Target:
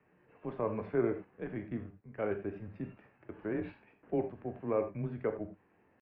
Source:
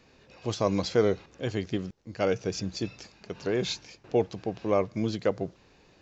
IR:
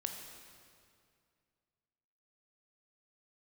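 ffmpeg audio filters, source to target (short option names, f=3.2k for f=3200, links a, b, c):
-filter_complex "[0:a]highpass=f=200:t=q:w=0.5412,highpass=f=200:t=q:w=1.307,lowpass=f=2.1k:t=q:w=0.5176,lowpass=f=2.1k:t=q:w=0.7071,lowpass=f=2.1k:t=q:w=1.932,afreqshift=-98,asetrate=48091,aresample=44100,atempo=0.917004[a];[1:a]atrim=start_sample=2205,atrim=end_sample=4410[b];[a][b]afir=irnorm=-1:irlink=0,volume=-6dB"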